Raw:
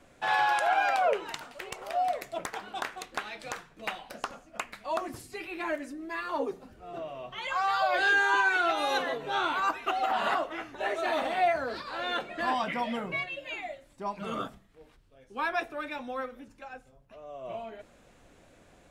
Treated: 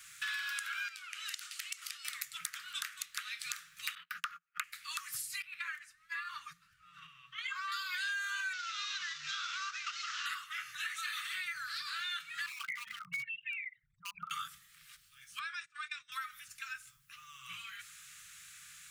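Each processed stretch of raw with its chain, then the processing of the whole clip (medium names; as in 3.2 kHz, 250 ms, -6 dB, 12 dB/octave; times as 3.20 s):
0.88–2.05 s: band-pass filter 5.3 kHz, Q 0.5 + compression 3:1, threshold -43 dBFS
3.95–4.64 s: gate -46 dBFS, range -32 dB + FFT filter 140 Hz 0 dB, 210 Hz +10 dB, 530 Hz -5 dB, 1.3 kHz +11 dB, 3 kHz 0 dB, 8.4 kHz -16 dB, 13 kHz -6 dB
5.42–7.72 s: gate -38 dBFS, range -8 dB + low-pass 1.6 kHz 6 dB/octave
8.53–10.26 s: CVSD coder 32 kbps + compression, threshold -29 dBFS
12.46–14.31 s: resonances exaggerated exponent 3 + distance through air 290 m + overload inside the chain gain 30 dB
15.39–16.12 s: gate -39 dBFS, range -25 dB + Chebyshev low-pass 8.6 kHz, order 5 + compression 3:1, threshold -41 dBFS
whole clip: Chebyshev band-stop 170–1200 Hz, order 5; tilt EQ +4.5 dB/octave; compression 5:1, threshold -42 dBFS; trim +4 dB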